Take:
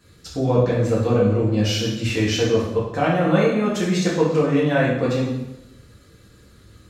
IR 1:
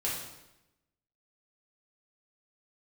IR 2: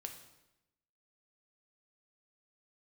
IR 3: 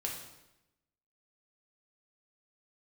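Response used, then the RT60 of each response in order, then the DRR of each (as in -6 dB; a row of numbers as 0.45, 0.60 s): 1; 0.95, 0.95, 0.95 s; -6.5, 4.0, -1.5 dB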